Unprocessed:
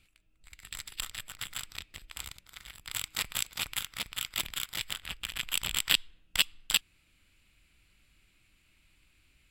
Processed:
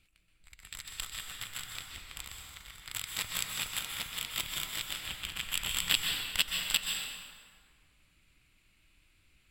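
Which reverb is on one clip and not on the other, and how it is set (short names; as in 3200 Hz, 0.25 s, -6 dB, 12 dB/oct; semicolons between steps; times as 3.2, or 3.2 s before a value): plate-style reverb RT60 1.9 s, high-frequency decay 0.65×, pre-delay 0.115 s, DRR 1 dB; gain -3 dB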